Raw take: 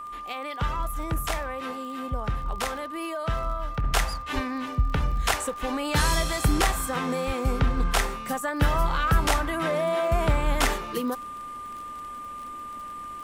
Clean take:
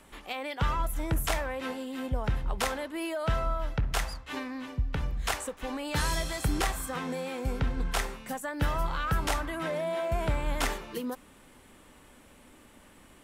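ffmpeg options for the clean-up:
ffmpeg -i in.wav -filter_complex "[0:a]adeclick=threshold=4,bandreject=frequency=1200:width=30,asplit=3[link_01][link_02][link_03];[link_01]afade=type=out:start_time=4.34:duration=0.02[link_04];[link_02]highpass=frequency=140:width=0.5412,highpass=frequency=140:width=1.3066,afade=type=in:start_time=4.34:duration=0.02,afade=type=out:start_time=4.46:duration=0.02[link_05];[link_03]afade=type=in:start_time=4.46:duration=0.02[link_06];[link_04][link_05][link_06]amix=inputs=3:normalize=0,asplit=3[link_07][link_08][link_09];[link_07]afade=type=out:start_time=7.26:duration=0.02[link_10];[link_08]highpass=frequency=140:width=0.5412,highpass=frequency=140:width=1.3066,afade=type=in:start_time=7.26:duration=0.02,afade=type=out:start_time=7.38:duration=0.02[link_11];[link_09]afade=type=in:start_time=7.38:duration=0.02[link_12];[link_10][link_11][link_12]amix=inputs=3:normalize=0,asplit=3[link_13][link_14][link_15];[link_13]afade=type=out:start_time=9.12:duration=0.02[link_16];[link_14]highpass=frequency=140:width=0.5412,highpass=frequency=140:width=1.3066,afade=type=in:start_time=9.12:duration=0.02,afade=type=out:start_time=9.24:duration=0.02[link_17];[link_15]afade=type=in:start_time=9.24:duration=0.02[link_18];[link_16][link_17][link_18]amix=inputs=3:normalize=0,asetnsamples=nb_out_samples=441:pad=0,asendcmd='3.84 volume volume -6dB',volume=0dB" out.wav

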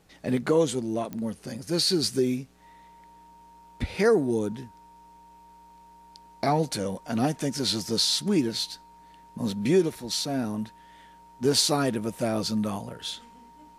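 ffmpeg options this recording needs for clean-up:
ffmpeg -i in.wav -af "adeclick=threshold=4,bandreject=frequency=930:width=30" out.wav

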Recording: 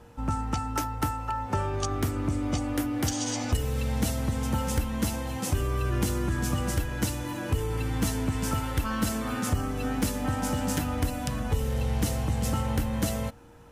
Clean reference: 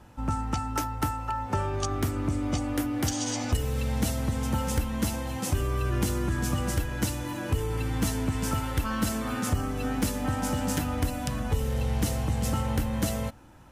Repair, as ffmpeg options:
ffmpeg -i in.wav -af "bandreject=frequency=470:width=30" out.wav

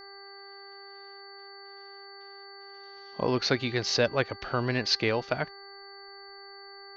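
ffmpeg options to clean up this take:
ffmpeg -i in.wav -af "bandreject=frequency=395.7:width_type=h:width=4,bandreject=frequency=791.4:width_type=h:width=4,bandreject=frequency=1187.1:width_type=h:width=4,bandreject=frequency=1582.8:width_type=h:width=4,bandreject=frequency=1978.5:width_type=h:width=4,bandreject=frequency=4500:width=30" out.wav

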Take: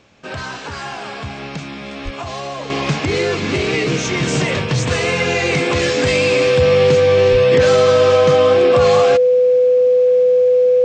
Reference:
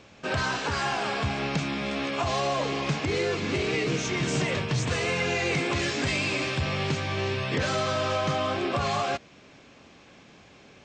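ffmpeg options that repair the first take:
ffmpeg -i in.wav -filter_complex "[0:a]bandreject=frequency=500:width=30,asplit=3[link_01][link_02][link_03];[link_01]afade=type=out:start_time=2.04:duration=0.02[link_04];[link_02]highpass=frequency=140:width=0.5412,highpass=frequency=140:width=1.3066,afade=type=in:start_time=2.04:duration=0.02,afade=type=out:start_time=2.16:duration=0.02[link_05];[link_03]afade=type=in:start_time=2.16:duration=0.02[link_06];[link_04][link_05][link_06]amix=inputs=3:normalize=0,asplit=3[link_07][link_08][link_09];[link_07]afade=type=out:start_time=7.31:duration=0.02[link_10];[link_08]highpass=frequency=140:width=0.5412,highpass=frequency=140:width=1.3066,afade=type=in:start_time=7.31:duration=0.02,afade=type=out:start_time=7.43:duration=0.02[link_11];[link_09]afade=type=in:start_time=7.43:duration=0.02[link_12];[link_10][link_11][link_12]amix=inputs=3:normalize=0,asetnsamples=nb_out_samples=441:pad=0,asendcmd='2.7 volume volume -9dB',volume=0dB" out.wav

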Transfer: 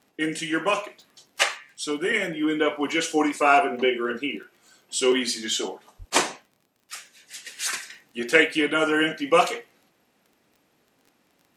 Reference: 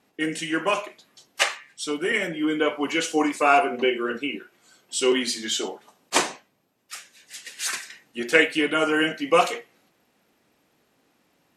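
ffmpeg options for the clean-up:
ffmpeg -i in.wav -filter_complex "[0:a]adeclick=threshold=4,asplit=3[link_01][link_02][link_03];[link_01]afade=type=out:start_time=5.98:duration=0.02[link_04];[link_02]highpass=frequency=140:width=0.5412,highpass=frequency=140:width=1.3066,afade=type=in:start_time=5.98:duration=0.02,afade=type=out:start_time=6.1:duration=0.02[link_05];[link_03]afade=type=in:start_time=6.1:duration=0.02[link_06];[link_04][link_05][link_06]amix=inputs=3:normalize=0" out.wav

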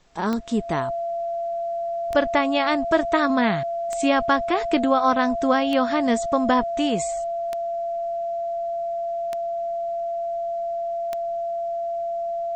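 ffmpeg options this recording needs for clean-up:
ffmpeg -i in.wav -af "adeclick=threshold=4,bandreject=frequency=680:width=30,agate=range=-21dB:threshold=-19dB" out.wav

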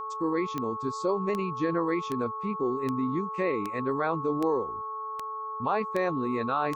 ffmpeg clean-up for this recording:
ffmpeg -i in.wav -af "adeclick=threshold=4,bandreject=frequency=435:width_type=h:width=4,bandreject=frequency=870:width_type=h:width=4,bandreject=frequency=1305:width_type=h:width=4,bandreject=frequency=1100:width=30" out.wav

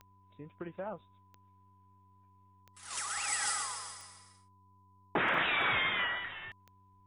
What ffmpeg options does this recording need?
ffmpeg -i in.wav -af "adeclick=threshold=4,bandreject=frequency=96.1:width_type=h:width=4,bandreject=frequency=192.2:width_type=h:width=4,bandreject=frequency=288.3:width_type=h:width=4,bandreject=frequency=384.4:width_type=h:width=4,bandreject=frequency=1000:width=30" out.wav

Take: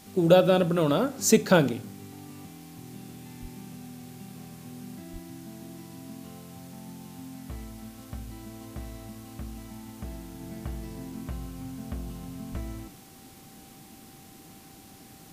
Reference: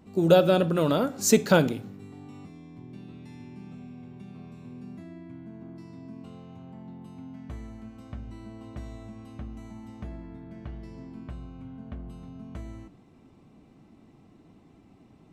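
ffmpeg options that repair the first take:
ffmpeg -i in.wav -filter_complex "[0:a]bandreject=frequency=780:width=30,asplit=3[link_01][link_02][link_03];[link_01]afade=type=out:start_time=3.41:duration=0.02[link_04];[link_02]highpass=frequency=140:width=0.5412,highpass=frequency=140:width=1.3066,afade=type=in:start_time=3.41:duration=0.02,afade=type=out:start_time=3.53:duration=0.02[link_05];[link_03]afade=type=in:start_time=3.53:duration=0.02[link_06];[link_04][link_05][link_06]amix=inputs=3:normalize=0,asplit=3[link_07][link_08][link_09];[link_07]afade=type=out:start_time=5.12:duration=0.02[link_10];[link_08]highpass=frequency=140:width=0.5412,highpass=frequency=140:width=1.3066,afade=type=in:start_time=5.12:duration=0.02,afade=type=out:start_time=5.24:duration=0.02[link_11];[link_09]afade=type=in:start_time=5.24:duration=0.02[link_12];[link_10][link_11][link_12]amix=inputs=3:normalize=0,asplit=3[link_13][link_14][link_15];[link_13]afade=type=out:start_time=12.51:duration=0.02[link_16];[link_14]highpass=frequency=140:width=0.5412,highpass=frequency=140:width=1.3066,afade=type=in:start_time=12.51:duration=0.02,afade=type=out:start_time=12.63:duration=0.02[link_17];[link_15]afade=type=in:start_time=12.63:duration=0.02[link_18];[link_16][link_17][link_18]amix=inputs=3:normalize=0,afwtdn=0.0022,asetnsamples=nb_out_samples=441:pad=0,asendcmd='10.4 volume volume -3.5dB',volume=0dB" out.wav

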